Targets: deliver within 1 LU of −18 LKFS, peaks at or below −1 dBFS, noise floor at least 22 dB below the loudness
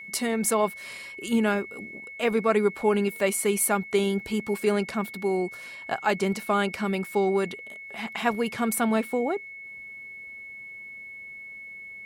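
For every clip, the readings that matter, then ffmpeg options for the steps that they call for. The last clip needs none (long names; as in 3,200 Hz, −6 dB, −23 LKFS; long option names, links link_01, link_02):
interfering tone 2,200 Hz; level of the tone −39 dBFS; integrated loudness −26.0 LKFS; sample peak −10.5 dBFS; target loudness −18.0 LKFS
→ -af "bandreject=frequency=2200:width=30"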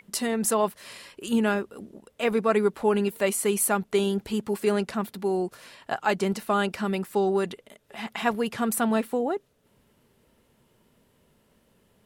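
interfering tone none found; integrated loudness −26.5 LKFS; sample peak −10.5 dBFS; target loudness −18.0 LKFS
→ -af "volume=8.5dB"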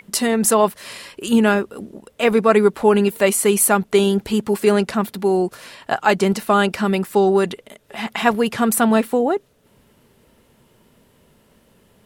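integrated loudness −18.0 LKFS; sample peak −2.0 dBFS; background noise floor −57 dBFS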